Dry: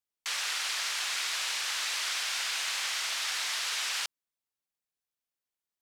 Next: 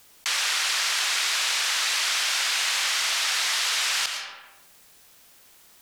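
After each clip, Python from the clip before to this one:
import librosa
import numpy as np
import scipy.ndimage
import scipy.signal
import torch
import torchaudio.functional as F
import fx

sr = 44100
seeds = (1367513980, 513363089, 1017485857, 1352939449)

y = fx.rev_freeverb(x, sr, rt60_s=0.6, hf_ratio=0.7, predelay_ms=70, drr_db=10.5)
y = fx.env_flatten(y, sr, amount_pct=50)
y = F.gain(torch.from_numpy(y), 7.0).numpy()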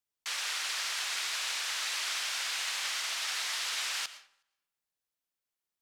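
y = x + 10.0 ** (-18.0 / 20.0) * np.pad(x, (int(368 * sr / 1000.0), 0))[:len(x)]
y = fx.upward_expand(y, sr, threshold_db=-43.0, expansion=2.5)
y = F.gain(torch.from_numpy(y), -8.5).numpy()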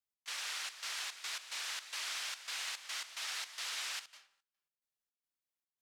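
y = fx.step_gate(x, sr, bpm=109, pattern='x.xxx.xx.x.x', floor_db=-12.0, edge_ms=4.5)
y = F.gain(torch.from_numpy(y), -6.0).numpy()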